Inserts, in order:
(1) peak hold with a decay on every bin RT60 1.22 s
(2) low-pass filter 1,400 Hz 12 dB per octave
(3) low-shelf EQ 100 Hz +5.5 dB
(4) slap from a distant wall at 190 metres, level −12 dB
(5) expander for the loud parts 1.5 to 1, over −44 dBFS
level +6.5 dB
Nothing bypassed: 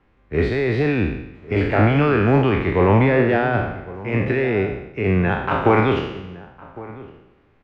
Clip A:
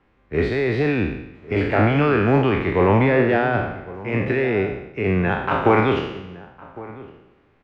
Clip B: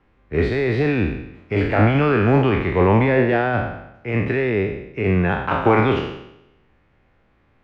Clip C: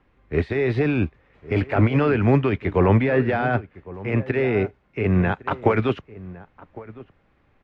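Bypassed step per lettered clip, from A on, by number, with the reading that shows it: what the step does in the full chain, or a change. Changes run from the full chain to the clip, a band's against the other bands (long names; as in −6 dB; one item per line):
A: 3, 125 Hz band −2.5 dB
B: 4, change in momentary loudness spread −5 LU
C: 1, 4 kHz band −2.5 dB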